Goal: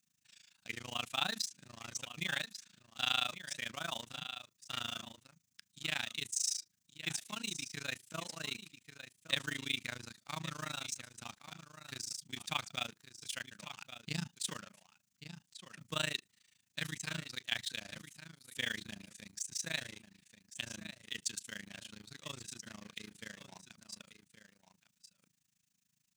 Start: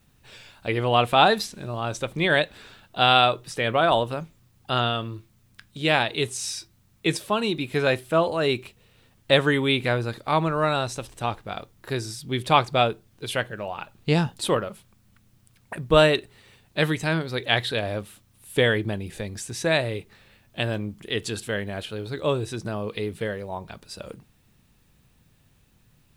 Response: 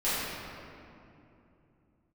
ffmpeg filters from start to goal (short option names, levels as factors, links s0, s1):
-filter_complex "[0:a]asplit=2[s0][s1];[s1]acrusher=bits=4:mix=0:aa=0.5,volume=0.668[s2];[s0][s2]amix=inputs=2:normalize=0,aderivative,asplit=2[s3][s4];[s4]aecho=0:1:1131:0.266[s5];[s3][s5]amix=inputs=2:normalize=0,asettb=1/sr,asplit=3[s6][s7][s8];[s6]atrim=end=14.604[s9];[s7]atrim=start=14.6:end=15.82,asetpts=PTS-STARTPTS,afade=t=in:d=0.004:c=qsin,afade=t=out:st=1.216:d=0.004:c=qsin,acrossover=split=5700[s10][s11];[s11]acompressor=threshold=0.00355:ratio=4:attack=1:release=60[s12];[s10][s12]amix=inputs=2:normalize=0[s13];[s8]atrim=start=15.816[s14];[s9][s13]acrossfade=d=0.004:c1=hsin:c2=qsin[s15];[s15][s14]acrossfade=d=0.004:c1=qsin:c2=hsin,firequalizer=gain_entry='entry(100,0);entry(170,9);entry(410,-15);entry(1800,-10);entry(3800,-13);entry(6400,-6);entry(11000,-22)':delay=0.05:min_phase=1,tremolo=f=27:d=0.974,volume=2.24"